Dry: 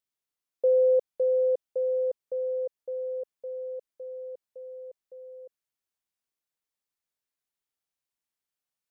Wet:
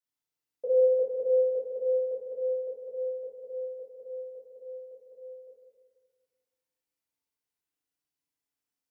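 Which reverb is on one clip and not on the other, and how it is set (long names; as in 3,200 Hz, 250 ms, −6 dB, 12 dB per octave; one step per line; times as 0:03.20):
feedback delay network reverb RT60 1.6 s, low-frequency decay 1.45×, high-frequency decay 0.8×, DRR −9 dB
level −10 dB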